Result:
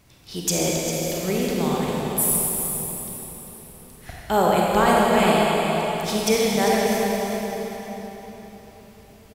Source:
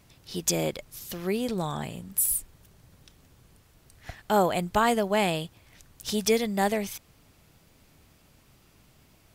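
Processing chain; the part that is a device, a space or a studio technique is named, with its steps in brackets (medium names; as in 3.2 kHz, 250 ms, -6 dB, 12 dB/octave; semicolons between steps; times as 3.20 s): cave (delay 399 ms -10.5 dB; reverberation RT60 4.2 s, pre-delay 27 ms, DRR -4 dB); trim +1.5 dB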